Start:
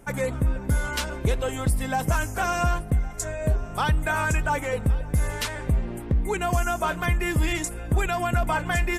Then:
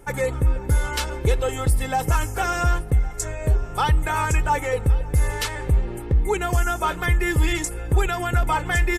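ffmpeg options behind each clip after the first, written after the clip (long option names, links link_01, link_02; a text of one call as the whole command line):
ffmpeg -i in.wav -af "aecho=1:1:2.3:0.52,volume=1.5dB" out.wav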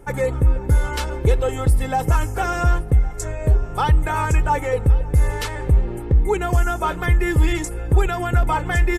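ffmpeg -i in.wav -af "tiltshelf=frequency=1400:gain=3.5" out.wav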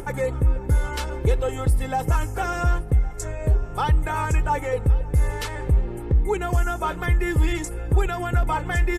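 ffmpeg -i in.wav -af "acompressor=mode=upward:threshold=-22dB:ratio=2.5,volume=-3.5dB" out.wav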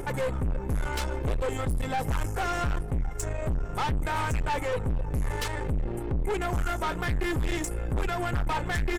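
ffmpeg -i in.wav -af "aeval=exprs='(tanh(22.4*val(0)+0.5)-tanh(0.5))/22.4':channel_layout=same,volume=2dB" out.wav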